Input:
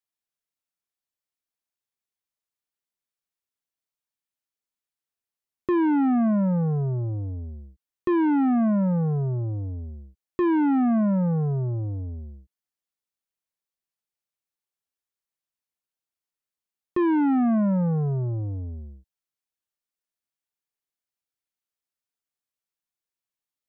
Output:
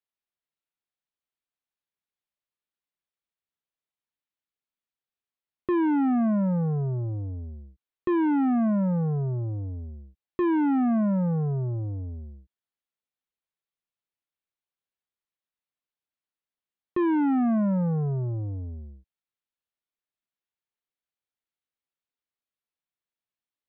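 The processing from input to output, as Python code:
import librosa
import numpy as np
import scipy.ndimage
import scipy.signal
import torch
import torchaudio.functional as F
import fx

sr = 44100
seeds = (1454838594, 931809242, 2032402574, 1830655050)

y = scipy.signal.sosfilt(scipy.signal.butter(6, 4200.0, 'lowpass', fs=sr, output='sos'), x)
y = y * librosa.db_to_amplitude(-2.0)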